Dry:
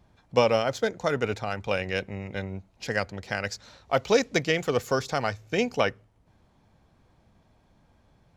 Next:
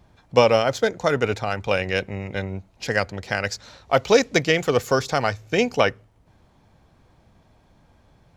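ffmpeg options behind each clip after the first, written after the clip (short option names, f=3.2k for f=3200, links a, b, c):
-af "equalizer=f=210:t=o:w=0.44:g=-2,volume=5.5dB"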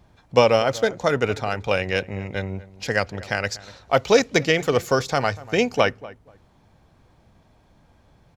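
-filter_complex "[0:a]asplit=2[a][b];[b]adelay=241,lowpass=f=1.5k:p=1,volume=-18dB,asplit=2[c][d];[d]adelay=241,lowpass=f=1.5k:p=1,volume=0.2[e];[a][c][e]amix=inputs=3:normalize=0"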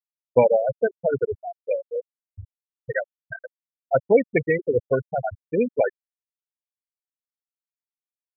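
-af "asuperstop=centerf=1200:order=4:qfactor=4.4,afftfilt=real='re*gte(hypot(re,im),0.398)':imag='im*gte(hypot(re,im),0.398)':win_size=1024:overlap=0.75"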